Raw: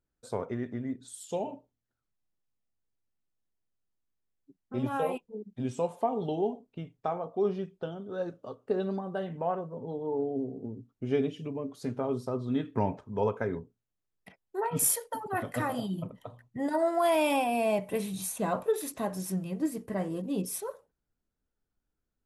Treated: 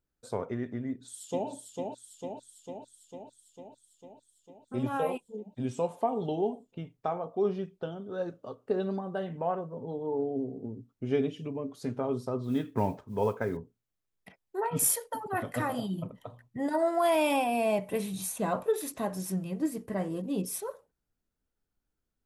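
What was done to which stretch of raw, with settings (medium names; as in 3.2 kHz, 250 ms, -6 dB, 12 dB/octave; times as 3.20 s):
0.88–1.49 s: echo throw 450 ms, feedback 70%, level -4 dB
12.43–13.57 s: modulation noise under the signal 32 dB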